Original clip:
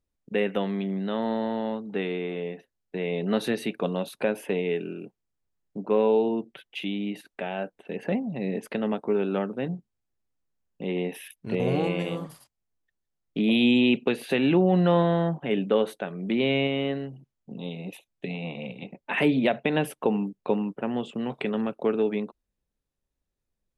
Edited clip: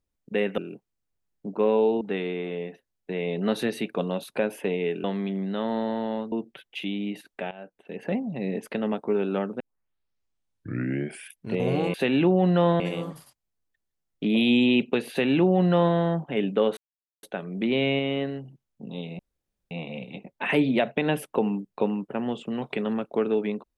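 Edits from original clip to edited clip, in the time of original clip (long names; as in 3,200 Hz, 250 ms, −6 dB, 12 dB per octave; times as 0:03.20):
0:00.58–0:01.86: swap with 0:04.89–0:06.32
0:07.51–0:08.20: fade in, from −15.5 dB
0:09.60: tape start 1.78 s
0:14.24–0:15.10: duplicate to 0:11.94
0:15.91: splice in silence 0.46 s
0:17.87–0:18.39: fill with room tone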